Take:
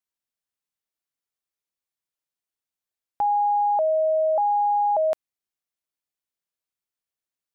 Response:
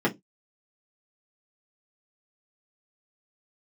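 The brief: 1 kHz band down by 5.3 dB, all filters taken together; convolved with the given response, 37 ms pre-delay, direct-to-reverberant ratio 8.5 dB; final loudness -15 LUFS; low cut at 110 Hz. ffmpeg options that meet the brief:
-filter_complex "[0:a]highpass=110,equalizer=f=1000:t=o:g=-7,asplit=2[s0][s1];[1:a]atrim=start_sample=2205,adelay=37[s2];[s1][s2]afir=irnorm=-1:irlink=0,volume=0.0841[s3];[s0][s3]amix=inputs=2:normalize=0,volume=3.76"

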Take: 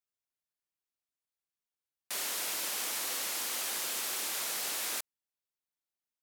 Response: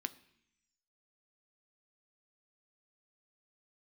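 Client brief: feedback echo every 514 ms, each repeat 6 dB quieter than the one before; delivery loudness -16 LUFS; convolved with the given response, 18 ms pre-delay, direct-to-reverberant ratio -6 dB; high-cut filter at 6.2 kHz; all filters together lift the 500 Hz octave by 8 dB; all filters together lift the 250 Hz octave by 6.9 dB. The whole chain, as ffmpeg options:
-filter_complex "[0:a]lowpass=6200,equalizer=f=250:t=o:g=5.5,equalizer=f=500:t=o:g=8.5,aecho=1:1:514|1028|1542|2056|2570|3084:0.501|0.251|0.125|0.0626|0.0313|0.0157,asplit=2[s0][s1];[1:a]atrim=start_sample=2205,adelay=18[s2];[s1][s2]afir=irnorm=-1:irlink=0,volume=2.11[s3];[s0][s3]amix=inputs=2:normalize=0,volume=4.47"

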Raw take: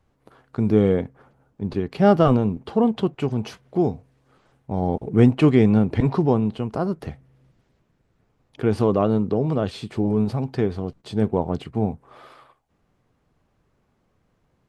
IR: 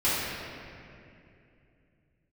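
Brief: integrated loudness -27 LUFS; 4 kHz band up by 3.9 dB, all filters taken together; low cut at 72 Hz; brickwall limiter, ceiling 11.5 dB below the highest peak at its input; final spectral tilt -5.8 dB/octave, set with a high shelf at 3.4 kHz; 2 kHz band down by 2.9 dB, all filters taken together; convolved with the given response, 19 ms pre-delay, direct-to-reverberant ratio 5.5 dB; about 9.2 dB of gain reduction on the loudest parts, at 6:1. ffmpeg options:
-filter_complex "[0:a]highpass=72,equalizer=f=2000:t=o:g=-7,highshelf=f=3400:g=6,equalizer=f=4000:t=o:g=4,acompressor=threshold=0.1:ratio=6,alimiter=limit=0.075:level=0:latency=1,asplit=2[s0][s1];[1:a]atrim=start_sample=2205,adelay=19[s2];[s1][s2]afir=irnorm=-1:irlink=0,volume=0.106[s3];[s0][s3]amix=inputs=2:normalize=0,volume=1.78"

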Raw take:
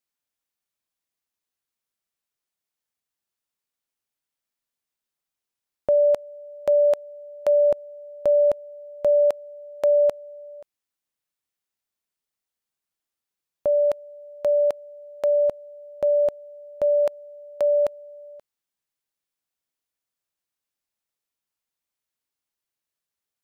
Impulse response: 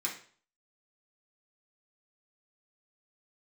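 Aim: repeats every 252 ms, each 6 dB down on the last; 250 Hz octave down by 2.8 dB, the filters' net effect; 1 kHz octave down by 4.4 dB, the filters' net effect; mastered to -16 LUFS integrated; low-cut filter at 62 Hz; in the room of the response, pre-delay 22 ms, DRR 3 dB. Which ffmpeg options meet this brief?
-filter_complex "[0:a]highpass=62,equalizer=f=250:t=o:g=-3.5,equalizer=f=1000:t=o:g=-6.5,aecho=1:1:252|504|756|1008|1260|1512:0.501|0.251|0.125|0.0626|0.0313|0.0157,asplit=2[s0][s1];[1:a]atrim=start_sample=2205,adelay=22[s2];[s1][s2]afir=irnorm=-1:irlink=0,volume=0.473[s3];[s0][s3]amix=inputs=2:normalize=0,volume=2.66"

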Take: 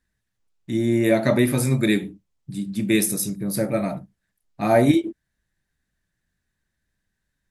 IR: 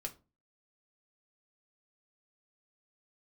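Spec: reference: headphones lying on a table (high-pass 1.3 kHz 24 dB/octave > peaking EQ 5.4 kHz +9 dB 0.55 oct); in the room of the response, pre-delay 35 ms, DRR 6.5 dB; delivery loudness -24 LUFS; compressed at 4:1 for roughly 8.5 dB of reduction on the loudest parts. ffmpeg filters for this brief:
-filter_complex "[0:a]acompressor=threshold=0.0794:ratio=4,asplit=2[s0][s1];[1:a]atrim=start_sample=2205,adelay=35[s2];[s1][s2]afir=irnorm=-1:irlink=0,volume=0.596[s3];[s0][s3]amix=inputs=2:normalize=0,highpass=f=1300:w=0.5412,highpass=f=1300:w=1.3066,equalizer=f=5400:t=o:w=0.55:g=9,volume=2.51"

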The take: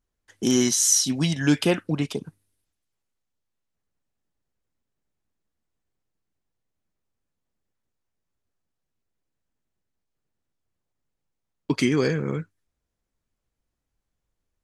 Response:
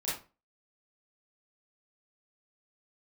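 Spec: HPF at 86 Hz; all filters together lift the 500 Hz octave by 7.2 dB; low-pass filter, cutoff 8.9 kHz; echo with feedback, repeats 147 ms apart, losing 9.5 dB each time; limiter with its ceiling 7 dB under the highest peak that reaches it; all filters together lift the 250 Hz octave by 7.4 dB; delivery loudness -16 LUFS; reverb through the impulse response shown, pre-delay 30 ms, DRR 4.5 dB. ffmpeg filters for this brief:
-filter_complex "[0:a]highpass=86,lowpass=8900,equalizer=f=250:t=o:g=7,equalizer=f=500:t=o:g=6.5,alimiter=limit=0.335:level=0:latency=1,aecho=1:1:147|294|441|588:0.335|0.111|0.0365|0.012,asplit=2[s0][s1];[1:a]atrim=start_sample=2205,adelay=30[s2];[s1][s2]afir=irnorm=-1:irlink=0,volume=0.355[s3];[s0][s3]amix=inputs=2:normalize=0,volume=1.41"

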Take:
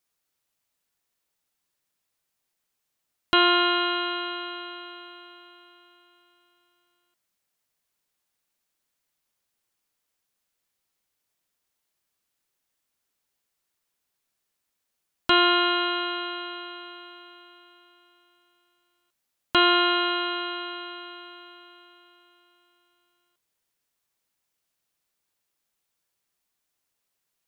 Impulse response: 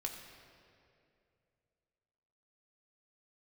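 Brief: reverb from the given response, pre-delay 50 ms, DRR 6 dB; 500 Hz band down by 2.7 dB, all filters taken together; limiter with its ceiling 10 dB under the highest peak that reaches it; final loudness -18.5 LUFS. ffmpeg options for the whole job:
-filter_complex "[0:a]equalizer=f=500:t=o:g=-5.5,alimiter=limit=0.141:level=0:latency=1,asplit=2[s0][s1];[1:a]atrim=start_sample=2205,adelay=50[s2];[s1][s2]afir=irnorm=-1:irlink=0,volume=0.531[s3];[s0][s3]amix=inputs=2:normalize=0,volume=2.99"

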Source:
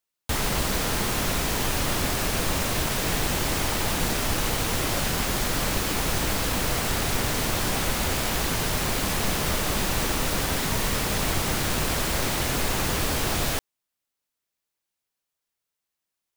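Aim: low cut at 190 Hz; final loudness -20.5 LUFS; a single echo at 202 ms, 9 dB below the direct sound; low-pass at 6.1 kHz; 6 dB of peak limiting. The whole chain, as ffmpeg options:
-af "highpass=190,lowpass=6100,alimiter=limit=0.0794:level=0:latency=1,aecho=1:1:202:0.355,volume=2.99"

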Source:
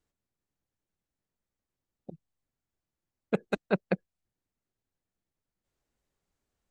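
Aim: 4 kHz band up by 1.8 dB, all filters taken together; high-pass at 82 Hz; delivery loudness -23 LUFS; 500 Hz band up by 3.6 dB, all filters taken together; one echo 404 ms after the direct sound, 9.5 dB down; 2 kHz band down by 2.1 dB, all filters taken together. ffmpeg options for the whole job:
-af "highpass=82,equalizer=f=500:t=o:g=4.5,equalizer=f=2000:t=o:g=-4,equalizer=f=4000:t=o:g=3,aecho=1:1:404:0.335,volume=2.66"

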